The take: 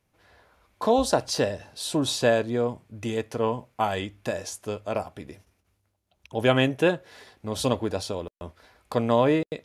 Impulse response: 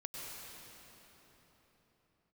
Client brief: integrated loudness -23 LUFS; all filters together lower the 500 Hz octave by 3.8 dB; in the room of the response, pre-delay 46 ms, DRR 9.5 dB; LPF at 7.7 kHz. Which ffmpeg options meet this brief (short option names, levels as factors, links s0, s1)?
-filter_complex "[0:a]lowpass=7700,equalizer=f=500:t=o:g=-4.5,asplit=2[s0][s1];[1:a]atrim=start_sample=2205,adelay=46[s2];[s1][s2]afir=irnorm=-1:irlink=0,volume=0.355[s3];[s0][s3]amix=inputs=2:normalize=0,volume=1.78"